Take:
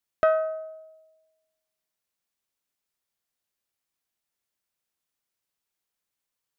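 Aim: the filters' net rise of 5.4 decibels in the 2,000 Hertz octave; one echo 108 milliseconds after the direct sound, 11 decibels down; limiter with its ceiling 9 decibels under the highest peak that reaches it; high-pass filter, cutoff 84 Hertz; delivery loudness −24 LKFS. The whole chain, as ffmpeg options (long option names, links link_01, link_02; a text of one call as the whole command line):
ffmpeg -i in.wav -af "highpass=84,equalizer=frequency=2000:width_type=o:gain=8,alimiter=limit=-17.5dB:level=0:latency=1,aecho=1:1:108:0.282,volume=5.5dB" out.wav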